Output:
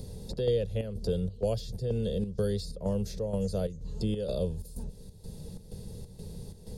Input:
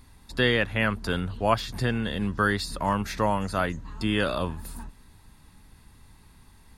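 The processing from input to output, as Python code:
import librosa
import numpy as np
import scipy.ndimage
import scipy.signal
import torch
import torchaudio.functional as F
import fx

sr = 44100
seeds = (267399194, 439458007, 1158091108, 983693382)

y = fx.curve_eq(x, sr, hz=(190.0, 280.0, 480.0, 710.0, 1100.0, 2200.0, 3200.0, 5000.0, 14000.0), db=(0, -15, 7, -12, -28, -25, -12, -3, -7))
y = fx.chopper(y, sr, hz=2.1, depth_pct=65, duty_pct=70)
y = fx.band_squash(y, sr, depth_pct=70)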